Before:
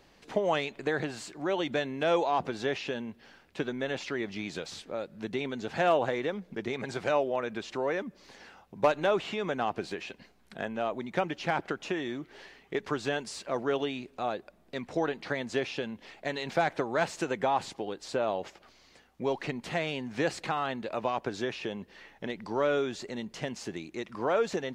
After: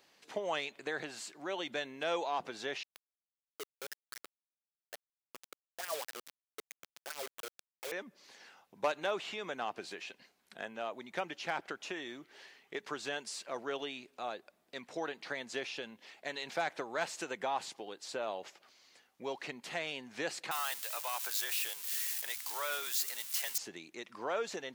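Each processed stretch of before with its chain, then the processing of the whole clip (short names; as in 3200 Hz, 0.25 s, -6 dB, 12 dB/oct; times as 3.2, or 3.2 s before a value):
2.83–7.92 wah 4.7 Hz 410–2000 Hz, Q 5.7 + requantised 6-bit, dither none
20.51–23.58 switching spikes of -29.5 dBFS + HPF 1000 Hz + sample leveller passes 1
whole clip: HPF 210 Hz 6 dB/oct; tilt +2 dB/oct; gain -6.5 dB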